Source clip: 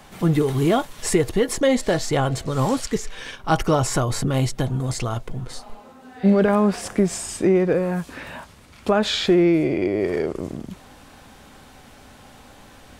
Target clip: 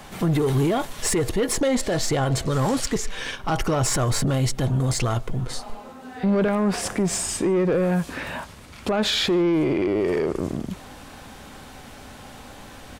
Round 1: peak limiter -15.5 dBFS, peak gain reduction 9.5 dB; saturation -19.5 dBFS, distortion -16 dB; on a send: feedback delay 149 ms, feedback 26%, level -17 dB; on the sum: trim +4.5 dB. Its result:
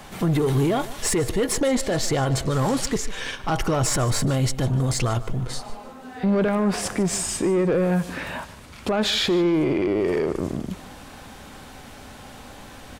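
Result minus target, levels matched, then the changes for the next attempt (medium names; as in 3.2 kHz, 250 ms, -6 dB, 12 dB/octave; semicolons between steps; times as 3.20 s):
echo-to-direct +12 dB
change: feedback delay 149 ms, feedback 26%, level -28.5 dB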